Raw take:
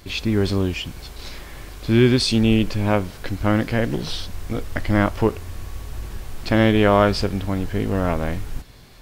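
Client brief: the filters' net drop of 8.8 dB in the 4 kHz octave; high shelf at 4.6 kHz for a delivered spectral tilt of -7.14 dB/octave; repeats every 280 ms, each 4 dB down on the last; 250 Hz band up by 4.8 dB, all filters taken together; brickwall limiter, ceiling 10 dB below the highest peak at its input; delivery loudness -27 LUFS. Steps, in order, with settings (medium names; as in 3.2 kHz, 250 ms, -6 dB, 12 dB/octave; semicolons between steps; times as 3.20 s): peaking EQ 250 Hz +6 dB; peaking EQ 4 kHz -7.5 dB; treble shelf 4.6 kHz -7.5 dB; peak limiter -12.5 dBFS; feedback delay 280 ms, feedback 63%, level -4 dB; trim -5 dB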